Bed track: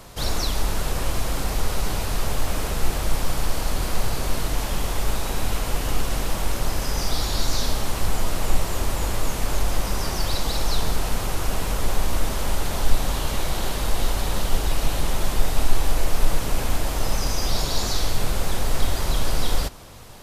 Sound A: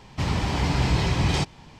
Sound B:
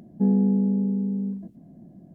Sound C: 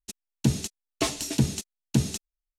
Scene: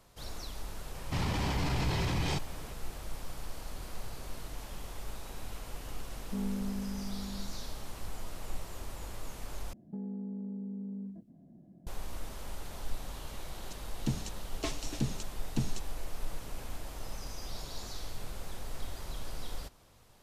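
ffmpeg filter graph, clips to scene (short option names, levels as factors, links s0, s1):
-filter_complex "[2:a]asplit=2[s0][s1];[0:a]volume=0.126[s2];[1:a]alimiter=limit=0.1:level=0:latency=1:release=16[s3];[s1]acompressor=threshold=0.0398:ratio=6:attack=3.2:release=140:knee=1:detection=peak[s4];[3:a]lowpass=7600[s5];[s2]asplit=2[s6][s7];[s6]atrim=end=9.734[s8];[s4]atrim=end=2.14,asetpts=PTS-STARTPTS,volume=0.355[s9];[s7]atrim=start=11.866[s10];[s3]atrim=end=1.79,asetpts=PTS-STARTPTS,volume=0.631,afade=t=in:d=0.004:c=hsin,afade=t=out:st=1.786:d=0.004:c=hsin,adelay=940[s11];[s0]atrim=end=2.14,asetpts=PTS-STARTPTS,volume=0.168,afade=t=in:d=0.004:c=hsin,afade=t=out:st=2.136:d=0.004:c=hsin,adelay=6120[s12];[s5]atrim=end=2.58,asetpts=PTS-STARTPTS,volume=0.316,afade=t=in:d=0.004:c=hsin,afade=t=out:st=2.576:d=0.004:c=hsin,adelay=13620[s13];[s8][s9]acrossfade=d=0.004:c1=hsin:c2=hsin[s14];[s14][s10]acrossfade=d=0.004:c1=hsin:c2=hsin[s15];[s15][s11][s12][s13]amix=inputs=4:normalize=0"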